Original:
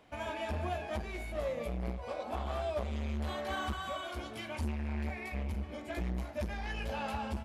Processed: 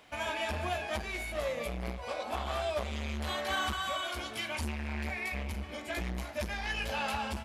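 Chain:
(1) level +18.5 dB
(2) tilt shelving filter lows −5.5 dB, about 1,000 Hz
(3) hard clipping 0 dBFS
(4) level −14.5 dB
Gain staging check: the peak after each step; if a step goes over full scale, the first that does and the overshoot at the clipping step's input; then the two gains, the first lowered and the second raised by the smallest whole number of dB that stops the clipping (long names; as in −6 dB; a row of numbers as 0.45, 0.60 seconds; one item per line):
−3.0, −4.0, −4.0, −18.5 dBFS
no step passes full scale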